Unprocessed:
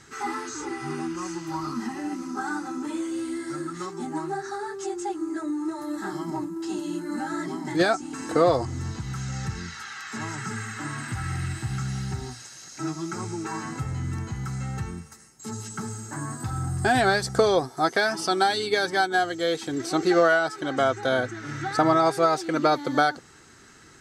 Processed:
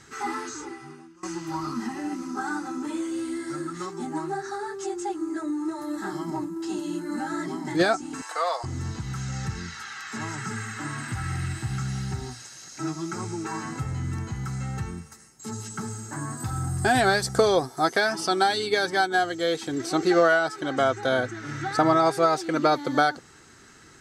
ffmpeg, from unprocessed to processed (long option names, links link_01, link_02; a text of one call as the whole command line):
ffmpeg -i in.wav -filter_complex "[0:a]asettb=1/sr,asplit=3[link_01][link_02][link_03];[link_01]atrim=end=8.224[link_04];[link_02]atrim=start=8.22:end=8.64,asetpts=PTS-STARTPTS,afade=type=in:duration=0.004:curve=qsin,afade=type=out:start_time=0.416:duration=0.004:curve=qsin,highpass=frequency=740:width=0.5412,highpass=frequency=740:width=1.3066[link_05];[link_03]atrim=start=8.636[link_06];[link_04][link_05]acrossfade=duration=0.004:curve1=hsin:curve2=qsin[link_07];[link_07][link_06]acrossfade=duration=0.004:curve1=qsin:curve2=hsin,asettb=1/sr,asplit=3[link_08][link_09][link_10];[link_08]atrim=end=16.374[link_11];[link_09]atrim=start=16.37:end=17.99,asetpts=PTS-STARTPTS,afade=type=in:duration=0.004:curve=qsin,afade=type=out:start_time=1.616:duration=0.004:curve=qsin,highshelf=frequency=9000:gain=7[link_12];[link_10]atrim=start=17.986[link_13];[link_11][link_12]acrossfade=duration=0.004:curve1=hsin:curve2=qsin[link_14];[link_14][link_13]acrossfade=duration=0.004:curve1=qsin:curve2=hsin,asplit=2[link_15][link_16];[link_15]atrim=end=1.23,asetpts=PTS-STARTPTS,afade=type=out:start_time=0.47:duration=0.76:curve=qua:silence=0.0794328[link_17];[link_16]atrim=start=1.23,asetpts=PTS-STARTPTS,afade=type=in:duration=0.004:curve=hsin:silence=0.0794328[link_18];[link_17][link_18]concat=n=2:v=0:a=1" out.wav